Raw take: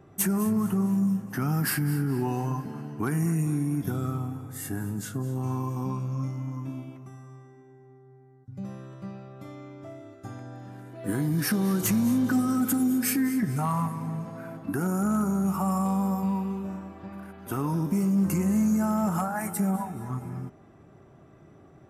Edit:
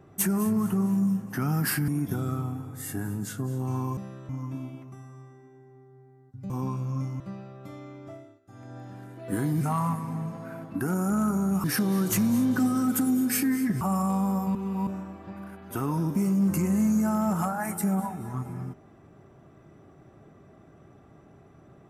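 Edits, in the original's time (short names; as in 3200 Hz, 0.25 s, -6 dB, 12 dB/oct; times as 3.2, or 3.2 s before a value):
1.88–3.64 cut
5.73–6.43 swap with 8.64–8.96
9.86–10.53 dip -16 dB, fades 0.30 s
13.54–15.57 move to 11.37
16.31–16.63 reverse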